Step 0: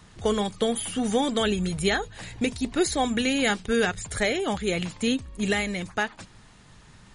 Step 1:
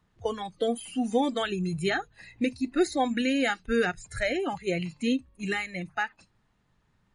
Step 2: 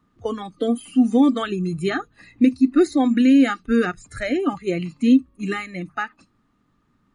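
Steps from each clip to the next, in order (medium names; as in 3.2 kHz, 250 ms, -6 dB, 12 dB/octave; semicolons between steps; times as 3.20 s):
spectral noise reduction 17 dB; treble shelf 3.7 kHz -12 dB; de-hum 48.85 Hz, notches 3
small resonant body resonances 270/1200 Hz, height 14 dB, ringing for 30 ms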